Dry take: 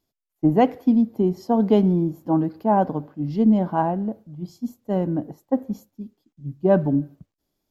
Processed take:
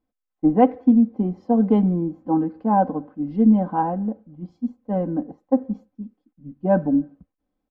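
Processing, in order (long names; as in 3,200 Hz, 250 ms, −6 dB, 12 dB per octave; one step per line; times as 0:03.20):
low-pass filter 1,700 Hz 12 dB per octave
comb filter 3.9 ms, depth 78%
level −2 dB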